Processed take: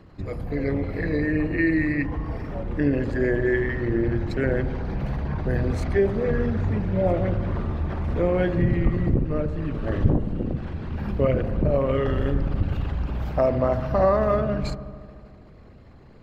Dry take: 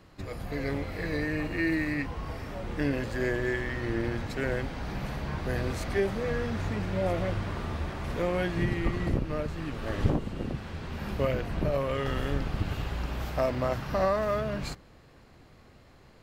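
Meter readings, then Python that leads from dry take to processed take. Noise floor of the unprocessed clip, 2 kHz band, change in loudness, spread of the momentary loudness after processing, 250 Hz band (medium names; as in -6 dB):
-55 dBFS, +3.0 dB, +6.5 dB, 8 LU, +7.5 dB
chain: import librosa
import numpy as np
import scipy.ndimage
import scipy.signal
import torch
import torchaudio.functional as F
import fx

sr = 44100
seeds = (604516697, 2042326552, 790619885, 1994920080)

y = fx.envelope_sharpen(x, sr, power=1.5)
y = fx.echo_wet_lowpass(y, sr, ms=75, feedback_pct=77, hz=1200.0, wet_db=-12.5)
y = F.gain(torch.from_numpy(y), 6.5).numpy()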